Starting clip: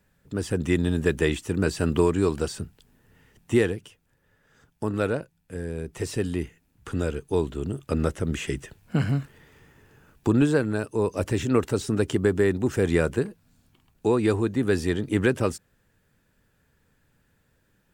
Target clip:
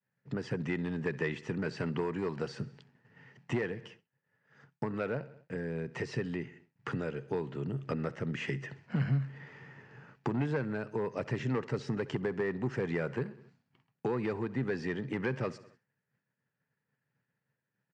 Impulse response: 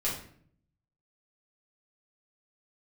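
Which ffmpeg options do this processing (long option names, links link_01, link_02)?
-af "aeval=exprs='clip(val(0),-1,0.15)':channel_layout=same,aecho=1:1:66|132|198|264:0.0944|0.0481|0.0246|0.0125,acompressor=threshold=-35dB:ratio=3,highpass=frequency=130:width=0.5412,highpass=frequency=130:width=1.3066,equalizer=frequency=130:width_type=q:width=4:gain=9,equalizer=frequency=310:width_type=q:width=4:gain=-5,equalizer=frequency=900:width_type=q:width=4:gain=3,equalizer=frequency=1900:width_type=q:width=4:gain=6,equalizer=frequency=3600:width_type=q:width=4:gain=-8,lowpass=frequency=4900:width=0.5412,lowpass=frequency=4900:width=1.3066,agate=range=-33dB:threshold=-54dB:ratio=3:detection=peak,volume=2dB"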